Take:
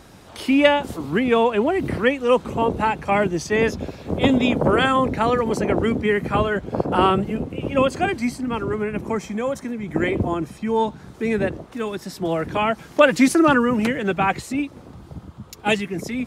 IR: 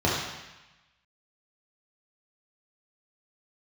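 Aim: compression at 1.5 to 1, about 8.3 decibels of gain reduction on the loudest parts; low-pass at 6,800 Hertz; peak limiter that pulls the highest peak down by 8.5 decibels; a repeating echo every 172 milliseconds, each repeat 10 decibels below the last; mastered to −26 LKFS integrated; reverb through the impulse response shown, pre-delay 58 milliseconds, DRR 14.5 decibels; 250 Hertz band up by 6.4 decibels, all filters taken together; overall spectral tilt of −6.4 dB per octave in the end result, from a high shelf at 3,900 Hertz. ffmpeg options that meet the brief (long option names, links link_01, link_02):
-filter_complex "[0:a]lowpass=6800,equalizer=frequency=250:width_type=o:gain=7.5,highshelf=frequency=3900:gain=-8,acompressor=threshold=-28dB:ratio=1.5,alimiter=limit=-16dB:level=0:latency=1,aecho=1:1:172|344|516|688:0.316|0.101|0.0324|0.0104,asplit=2[link_01][link_02];[1:a]atrim=start_sample=2205,adelay=58[link_03];[link_02][link_03]afir=irnorm=-1:irlink=0,volume=-30dB[link_04];[link_01][link_04]amix=inputs=2:normalize=0,volume=-1dB"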